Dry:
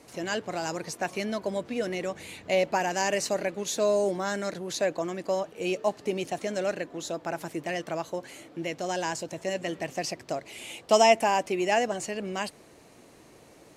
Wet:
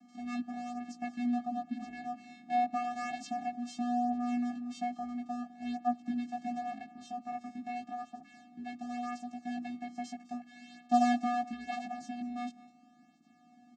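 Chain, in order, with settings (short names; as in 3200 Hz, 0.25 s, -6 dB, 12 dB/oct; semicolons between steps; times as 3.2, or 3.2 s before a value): echo 0.206 s -20 dB; vocoder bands 8, square 243 Hz; chorus 0.2 Hz, delay 15.5 ms, depth 3.7 ms; gain -2.5 dB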